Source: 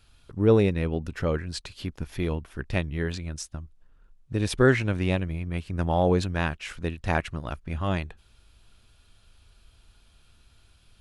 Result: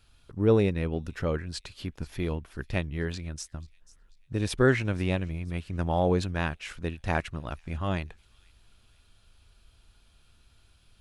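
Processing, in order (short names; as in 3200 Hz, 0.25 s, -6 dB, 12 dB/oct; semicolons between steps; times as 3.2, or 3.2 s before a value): thin delay 0.489 s, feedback 44%, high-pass 3700 Hz, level -19 dB; gain -2.5 dB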